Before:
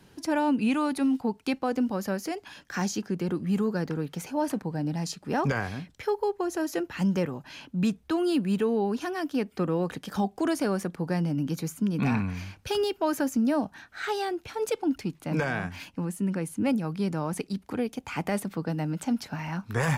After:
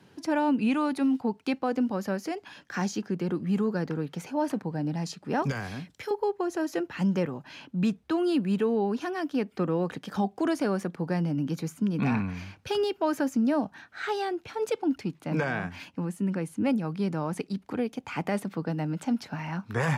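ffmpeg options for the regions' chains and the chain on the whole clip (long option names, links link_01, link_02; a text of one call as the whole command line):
ffmpeg -i in.wav -filter_complex "[0:a]asettb=1/sr,asplit=3[link_01][link_02][link_03];[link_01]atrim=end=5.424[link_04];[link_02]atrim=start=5.42:end=6.11,asetpts=PTS-STARTPTS,afade=type=in:duration=0.004:curve=qsin,afade=type=out:start_time=0.686:duration=0.004:curve=qsin,aemphasis=mode=production:type=cd,acrossover=split=230|3000[link_05][link_06][link_07];[link_06]acompressor=threshold=-34dB:ratio=2.5:attack=3.2:release=140:knee=2.83:detection=peak[link_08];[link_05][link_08][link_07]amix=inputs=3:normalize=0[link_09];[link_03]atrim=start=6.106[link_10];[link_04][link_09]acrossfade=duration=0.004:curve1=hsin:curve2=qsin[link_11];[link_11][link_10]acrossfade=duration=0.004:curve1=qsin:curve2=hsin,highpass=100,highshelf=frequency=7100:gain=-10.5" out.wav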